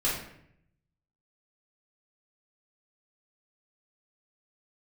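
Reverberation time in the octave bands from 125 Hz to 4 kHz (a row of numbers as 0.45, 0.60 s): 1.2, 0.90, 0.75, 0.65, 0.70, 0.50 s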